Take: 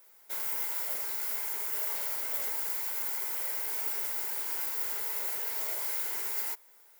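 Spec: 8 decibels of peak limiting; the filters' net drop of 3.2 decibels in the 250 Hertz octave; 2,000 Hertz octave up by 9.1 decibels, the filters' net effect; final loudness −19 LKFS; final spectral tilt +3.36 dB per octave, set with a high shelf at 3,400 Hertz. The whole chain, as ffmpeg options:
ffmpeg -i in.wav -af "equalizer=frequency=250:width_type=o:gain=-5.5,equalizer=frequency=2000:width_type=o:gain=9,highshelf=frequency=3400:gain=5.5,volume=8.5dB,alimiter=limit=-11dB:level=0:latency=1" out.wav

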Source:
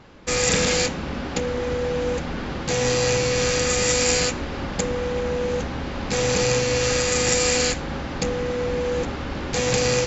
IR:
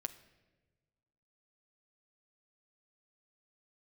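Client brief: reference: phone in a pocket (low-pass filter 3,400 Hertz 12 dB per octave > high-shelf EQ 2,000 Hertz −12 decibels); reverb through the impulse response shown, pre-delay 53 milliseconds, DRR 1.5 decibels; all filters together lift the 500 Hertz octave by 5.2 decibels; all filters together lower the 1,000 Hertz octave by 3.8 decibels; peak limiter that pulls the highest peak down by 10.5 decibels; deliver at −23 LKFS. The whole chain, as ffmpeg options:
-filter_complex "[0:a]equalizer=frequency=500:width_type=o:gain=7,equalizer=frequency=1000:width_type=o:gain=-5,alimiter=limit=-16dB:level=0:latency=1,asplit=2[link_01][link_02];[1:a]atrim=start_sample=2205,adelay=53[link_03];[link_02][link_03]afir=irnorm=-1:irlink=0,volume=0.5dB[link_04];[link_01][link_04]amix=inputs=2:normalize=0,lowpass=3400,highshelf=frequency=2000:gain=-12,volume=-0.5dB"

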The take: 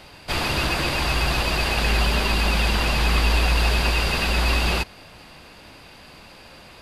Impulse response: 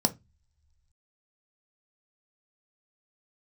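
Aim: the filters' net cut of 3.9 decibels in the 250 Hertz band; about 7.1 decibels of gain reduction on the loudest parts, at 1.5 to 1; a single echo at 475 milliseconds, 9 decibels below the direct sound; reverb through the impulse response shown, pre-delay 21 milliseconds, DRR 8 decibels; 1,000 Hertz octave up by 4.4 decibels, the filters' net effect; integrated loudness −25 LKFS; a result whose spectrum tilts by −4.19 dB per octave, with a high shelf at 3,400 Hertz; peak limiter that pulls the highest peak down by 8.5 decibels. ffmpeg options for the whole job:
-filter_complex "[0:a]equalizer=frequency=250:width_type=o:gain=-6,equalizer=frequency=1000:width_type=o:gain=5.5,highshelf=frequency=3400:gain=3,acompressor=threshold=-35dB:ratio=1.5,alimiter=limit=-22.5dB:level=0:latency=1,aecho=1:1:475:0.355,asplit=2[link_01][link_02];[1:a]atrim=start_sample=2205,adelay=21[link_03];[link_02][link_03]afir=irnorm=-1:irlink=0,volume=-16.5dB[link_04];[link_01][link_04]amix=inputs=2:normalize=0,volume=6.5dB"

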